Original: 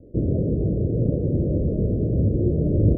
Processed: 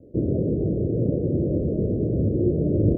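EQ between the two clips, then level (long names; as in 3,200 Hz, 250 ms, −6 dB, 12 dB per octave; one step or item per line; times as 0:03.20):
high-pass filter 110 Hz 6 dB per octave
dynamic equaliser 350 Hz, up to +3 dB, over −36 dBFS
0.0 dB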